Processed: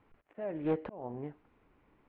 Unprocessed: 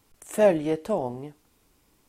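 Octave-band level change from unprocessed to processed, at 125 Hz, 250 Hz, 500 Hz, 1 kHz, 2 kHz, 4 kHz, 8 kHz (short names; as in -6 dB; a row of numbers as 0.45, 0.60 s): -7.5 dB, -8.5 dB, -14.0 dB, -13.0 dB, -15.0 dB, under -15 dB, under -35 dB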